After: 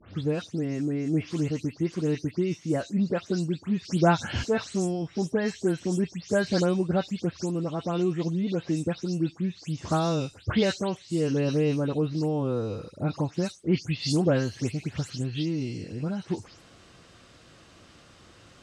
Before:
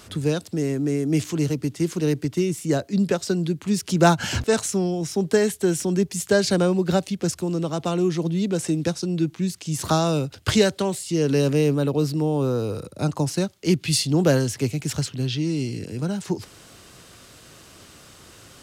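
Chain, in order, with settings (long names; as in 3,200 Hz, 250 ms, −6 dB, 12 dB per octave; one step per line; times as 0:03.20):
every frequency bin delayed by itself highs late, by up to 172 ms
high-frequency loss of the air 89 metres
level −4 dB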